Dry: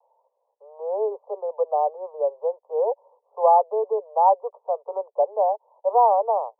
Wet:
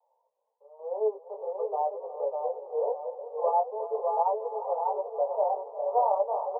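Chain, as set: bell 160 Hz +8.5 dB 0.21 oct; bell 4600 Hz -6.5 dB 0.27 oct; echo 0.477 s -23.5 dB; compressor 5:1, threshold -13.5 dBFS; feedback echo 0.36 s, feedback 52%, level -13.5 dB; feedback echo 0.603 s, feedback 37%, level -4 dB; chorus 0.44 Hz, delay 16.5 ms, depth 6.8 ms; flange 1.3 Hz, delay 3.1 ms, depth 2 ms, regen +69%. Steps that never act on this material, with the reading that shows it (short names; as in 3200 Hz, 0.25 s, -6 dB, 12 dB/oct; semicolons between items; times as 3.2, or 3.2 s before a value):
bell 160 Hz: input band starts at 380 Hz; bell 4600 Hz: input band ends at 1200 Hz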